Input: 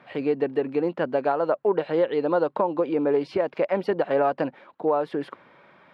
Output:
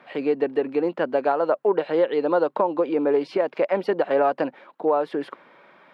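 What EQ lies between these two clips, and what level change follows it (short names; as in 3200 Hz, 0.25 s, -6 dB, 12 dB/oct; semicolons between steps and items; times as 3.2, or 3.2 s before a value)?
HPF 220 Hz 12 dB/oct; +2.0 dB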